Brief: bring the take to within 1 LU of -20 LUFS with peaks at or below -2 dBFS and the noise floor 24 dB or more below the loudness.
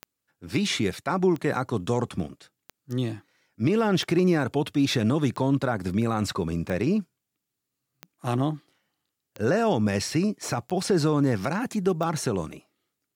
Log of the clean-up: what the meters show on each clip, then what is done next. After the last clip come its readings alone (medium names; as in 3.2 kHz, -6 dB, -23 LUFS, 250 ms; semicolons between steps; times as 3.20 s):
clicks found 10; loudness -26.0 LUFS; peak level -12.0 dBFS; loudness target -20.0 LUFS
-> de-click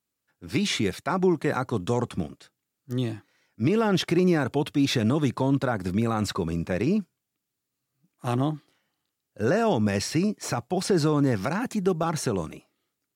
clicks found 0; loudness -26.0 LUFS; peak level -12.0 dBFS; loudness target -20.0 LUFS
-> trim +6 dB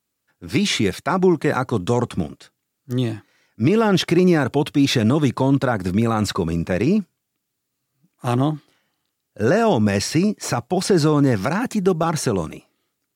loudness -20.0 LUFS; peak level -6.0 dBFS; noise floor -77 dBFS